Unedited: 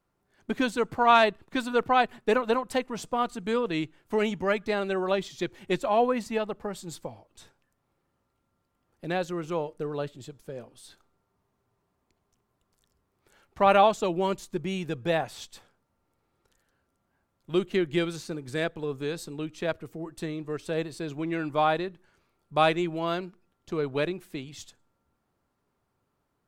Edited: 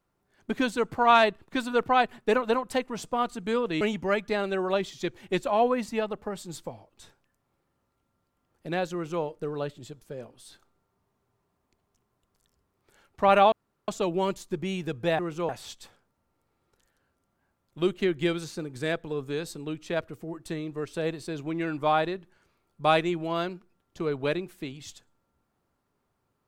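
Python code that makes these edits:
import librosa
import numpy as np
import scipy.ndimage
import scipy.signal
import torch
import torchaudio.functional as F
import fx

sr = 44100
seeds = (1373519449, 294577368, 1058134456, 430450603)

y = fx.edit(x, sr, fx.cut(start_s=3.81, length_s=0.38),
    fx.duplicate(start_s=9.31, length_s=0.3, to_s=15.21),
    fx.insert_room_tone(at_s=13.9, length_s=0.36), tone=tone)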